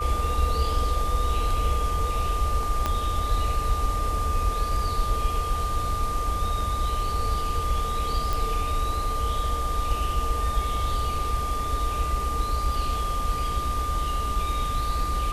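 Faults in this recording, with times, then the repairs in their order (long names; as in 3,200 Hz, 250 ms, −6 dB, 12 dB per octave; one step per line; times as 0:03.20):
whistle 1,200 Hz −28 dBFS
0:02.86: click −11 dBFS
0:08.33: click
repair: click removal
notch filter 1,200 Hz, Q 30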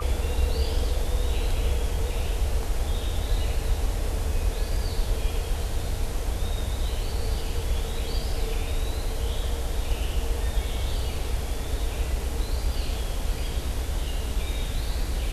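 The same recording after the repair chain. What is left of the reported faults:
0:02.86: click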